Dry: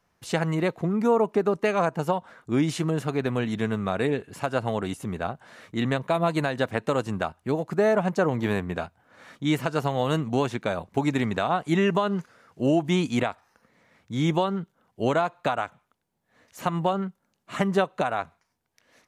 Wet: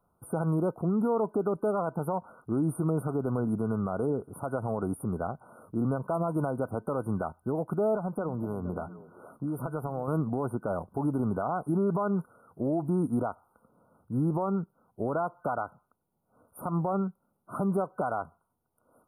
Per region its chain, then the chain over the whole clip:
7.95–10.08 s: compression, threshold -28 dBFS + repeats whose band climbs or falls 234 ms, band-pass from 180 Hz, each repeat 1.4 oct, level -10.5 dB
whole clip: FFT band-reject 1.5–8.8 kHz; peaking EQ 1.4 kHz -2 dB; peak limiter -20 dBFS

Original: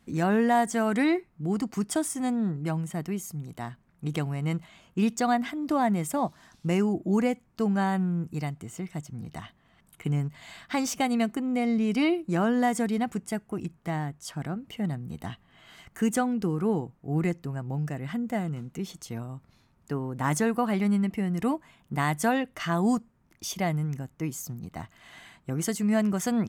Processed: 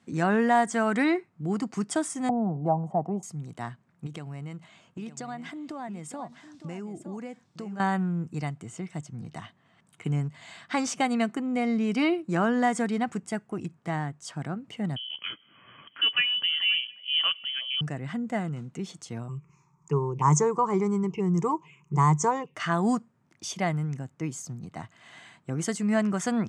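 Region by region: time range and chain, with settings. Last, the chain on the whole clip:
2.29–3.23 s: FFT filter 380 Hz 0 dB, 780 Hz +15 dB, 1.7 kHz -25 dB + three bands compressed up and down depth 40%
4.06–7.80 s: transient shaper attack +4 dB, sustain -1 dB + compression 4:1, threshold -36 dBFS + delay 910 ms -12 dB
14.96–17.81 s: frequency inversion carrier 3.2 kHz + repeats whose band climbs or falls 179 ms, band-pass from 220 Hz, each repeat 1.4 oct, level -11.5 dB
19.28–22.55 s: rippled EQ curve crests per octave 0.74, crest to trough 18 dB + touch-sensitive phaser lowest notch 460 Hz, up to 2.7 kHz, full sweep at -23 dBFS
whole clip: Chebyshev band-pass 110–8400 Hz, order 3; dynamic bell 1.4 kHz, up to +4 dB, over -41 dBFS, Q 1.2

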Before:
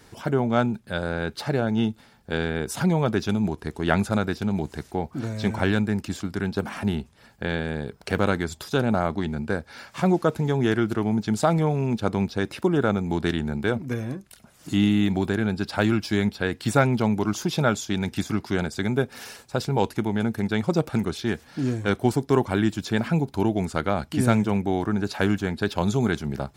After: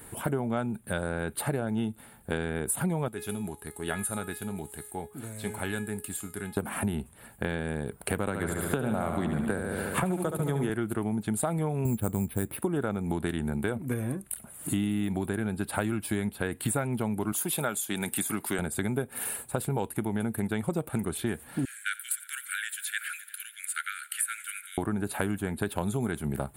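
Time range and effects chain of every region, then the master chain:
3.08–6.57 s: treble shelf 2.3 kHz +10 dB + feedback comb 420 Hz, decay 0.41 s, mix 80%
8.27–10.70 s: gate -38 dBFS, range -9 dB + feedback delay 71 ms, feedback 60%, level -7.5 dB + three bands compressed up and down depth 100%
11.85–12.57 s: bass shelf 250 Hz +11 dB + careless resampling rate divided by 6×, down none, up hold
17.32–18.59 s: high-pass 120 Hz + tilt EQ +2 dB/octave
21.65–24.78 s: steep high-pass 1.4 kHz 96 dB/octave + multi-head delay 86 ms, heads first and third, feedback 64%, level -21.5 dB
whole clip: resonant high shelf 7.4 kHz +10 dB, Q 3; compression 6:1, threshold -28 dBFS; peaking EQ 5.3 kHz -8.5 dB 0.67 oct; trim +2 dB

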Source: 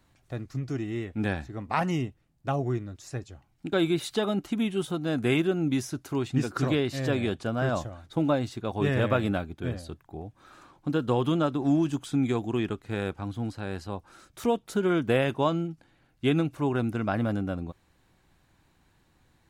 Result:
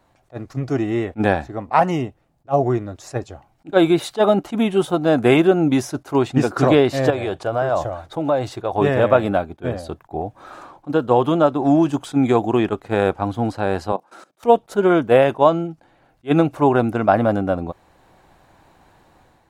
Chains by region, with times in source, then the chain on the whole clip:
7.10–8.78 s: peaking EQ 230 Hz -13.5 dB 0.3 oct + compression 5:1, threshold -31 dBFS
13.92–14.43 s: steep high-pass 160 Hz + level held to a coarse grid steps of 18 dB
whole clip: peaking EQ 700 Hz +12.5 dB 1.8 oct; level rider gain up to 7.5 dB; attacks held to a fixed rise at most 480 dB/s

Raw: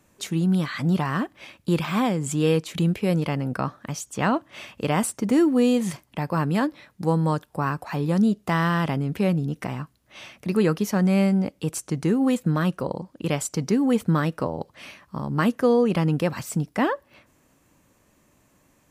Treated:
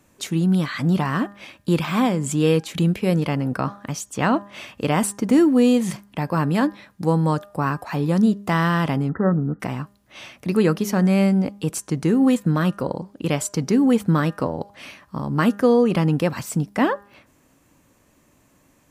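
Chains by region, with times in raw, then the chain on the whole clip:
9.09–9.60 s: brick-wall FIR low-pass 2 kHz + peaking EQ 1.3 kHz +14.5 dB 0.5 oct
whole clip: peaking EQ 270 Hz +2.5 dB 0.3 oct; de-hum 202.1 Hz, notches 9; trim +2.5 dB

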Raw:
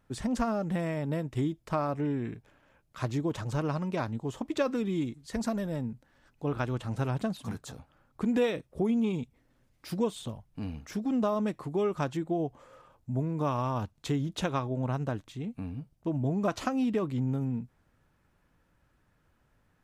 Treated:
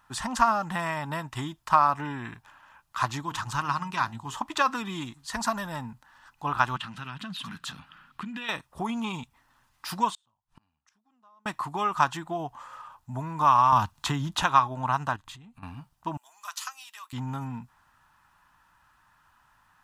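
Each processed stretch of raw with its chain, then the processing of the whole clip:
3.22–4.35 s: peaking EQ 600 Hz -10 dB 1.1 oct + de-hum 52.79 Hz, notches 15
6.76–8.49 s: compression 3:1, threshold -46 dBFS + FFT filter 110 Hz 0 dB, 170 Hz +14 dB, 850 Hz -7 dB, 1.4 kHz +4 dB, 3 kHz +12 dB, 6.6 kHz -2 dB
10.10–11.46 s: low-pass 9.3 kHz + inverted gate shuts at -37 dBFS, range -38 dB
13.72–14.43 s: bass shelf 360 Hz +6.5 dB + three bands compressed up and down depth 40%
15.16–15.63 s: bass shelf 170 Hz +11.5 dB + band-stop 5.7 kHz, Q 13 + compression 5:1, threshold -46 dBFS
16.17–17.13 s: high-pass 950 Hz + differentiator
whole clip: resonant low shelf 680 Hz -12 dB, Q 3; band-stop 2.2 kHz, Q 9.1; trim +9 dB

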